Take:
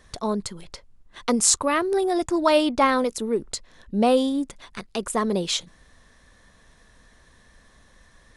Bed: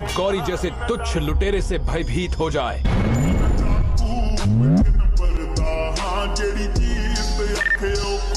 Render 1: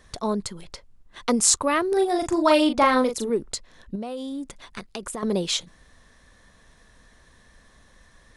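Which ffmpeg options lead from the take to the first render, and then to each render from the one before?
-filter_complex "[0:a]asettb=1/sr,asplit=3[a][b][c];[a]atrim=end=1.884[d];[b]atrim=start=1.88:end=3.3,asetpts=PTS-STARTPTS,afade=t=in:d=0.004:c=qsin,afade=t=out:st=1.416:d=0.004:c=qsin,asplit=2[e][f];[f]adelay=39,volume=-6.5dB[g];[e][g]amix=inputs=2:normalize=0,atrim=end_sample=62622[h];[c]atrim=start=3.296[i];[d][h]acrossfade=d=0.004:c1=hsin:c2=qsin[j];[j][i]acrossfade=d=0.004:c1=qsin:c2=hsin,asettb=1/sr,asplit=3[k][l][m];[k]atrim=end=3.954[n];[l]atrim=start=3.95:end=5.23,asetpts=PTS-STARTPTS,afade=t=in:d=0.004:c=qsin,afade=t=out:st=1.276:d=0.004:c=qsin,acompressor=threshold=-28dB:ratio=16:attack=3.2:release=140:knee=1:detection=peak[o];[m]atrim=start=5.226[p];[n][o]acrossfade=d=0.004:c1=hsin:c2=qsin[q];[q][p]acrossfade=d=0.004:c1=qsin:c2=hsin"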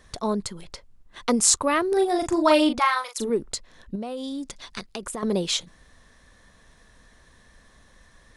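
-filter_complex "[0:a]asplit=3[a][b][c];[a]afade=t=out:st=2.78:d=0.02[d];[b]highpass=f=890:w=0.5412,highpass=f=890:w=1.3066,afade=t=in:st=2.78:d=0.02,afade=t=out:st=3.18:d=0.02[e];[c]afade=t=in:st=3.18:d=0.02[f];[d][e][f]amix=inputs=3:normalize=0,asettb=1/sr,asplit=3[g][h][i];[g]atrim=end=4.234[j];[h]atrim=start=4.23:end=4.86,asetpts=PTS-STARTPTS,afade=t=in:d=0.004:c=qsin,afade=t=out:st=0.626:d=0.004:c=qsin,equalizer=f=4.9k:w=1.1:g=9[k];[i]atrim=start=4.856[l];[j][k]acrossfade=d=0.004:c1=hsin:c2=qsin[m];[m][l]acrossfade=d=0.004:c1=qsin:c2=hsin"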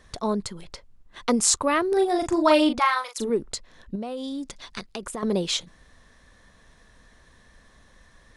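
-af "highshelf=f=8.9k:g=-5.5"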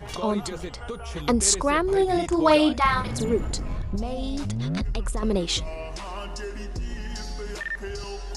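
-filter_complex "[1:a]volume=-12dB[a];[0:a][a]amix=inputs=2:normalize=0"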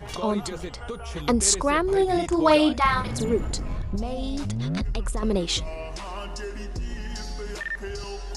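-af anull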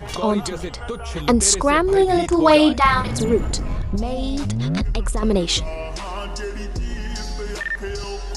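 -af "volume=5.5dB,alimiter=limit=-2dB:level=0:latency=1"

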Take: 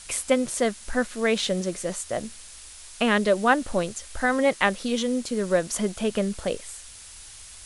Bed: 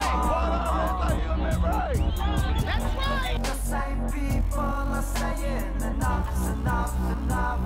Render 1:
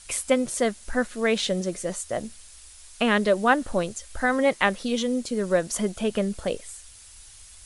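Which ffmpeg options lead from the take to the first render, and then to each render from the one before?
-af "afftdn=nr=6:nf=-45"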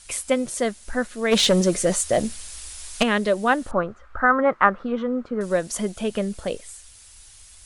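-filter_complex "[0:a]asplit=3[a][b][c];[a]afade=t=out:st=1.31:d=0.02[d];[b]aeval=exprs='0.266*sin(PI/2*2*val(0)/0.266)':c=same,afade=t=in:st=1.31:d=0.02,afade=t=out:st=3.02:d=0.02[e];[c]afade=t=in:st=3.02:d=0.02[f];[d][e][f]amix=inputs=3:normalize=0,asettb=1/sr,asplit=3[g][h][i];[g]atrim=end=3.714[j];[h]atrim=start=3.71:end=5.41,asetpts=PTS-STARTPTS,afade=t=in:d=0.004:c=qsin,afade=t=out:st=1.696:d=0.004:c=qsin,lowpass=f=1.3k:t=q:w=5[k];[i]atrim=start=5.406[l];[j][k]acrossfade=d=0.004:c1=hsin:c2=qsin[m];[m][l]acrossfade=d=0.004:c1=qsin:c2=hsin"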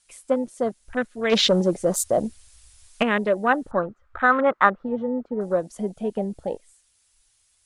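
-af "afwtdn=0.0398,lowshelf=f=81:g=-12"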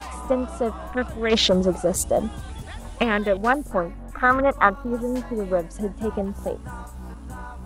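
-filter_complex "[1:a]volume=-10.5dB[a];[0:a][a]amix=inputs=2:normalize=0"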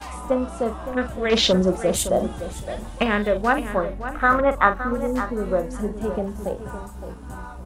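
-filter_complex "[0:a]asplit=2[a][b];[b]adelay=43,volume=-10.5dB[c];[a][c]amix=inputs=2:normalize=0,asplit=2[d][e];[e]adelay=564,lowpass=f=4.3k:p=1,volume=-11dB,asplit=2[f][g];[g]adelay=564,lowpass=f=4.3k:p=1,volume=0.17[h];[d][f][h]amix=inputs=3:normalize=0"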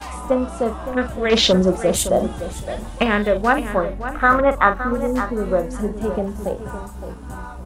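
-af "volume=3dB,alimiter=limit=-1dB:level=0:latency=1"

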